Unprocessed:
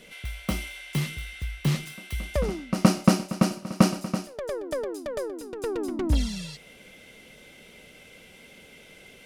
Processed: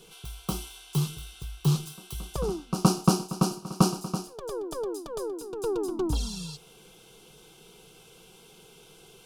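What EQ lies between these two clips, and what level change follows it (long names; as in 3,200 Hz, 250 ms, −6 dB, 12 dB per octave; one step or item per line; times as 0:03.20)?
dynamic equaliser 2,000 Hz, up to −6 dB, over −51 dBFS, Q 2.3
parametric band 200 Hz −6.5 dB 0.3 octaves
phaser with its sweep stopped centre 390 Hz, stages 8
+2.5 dB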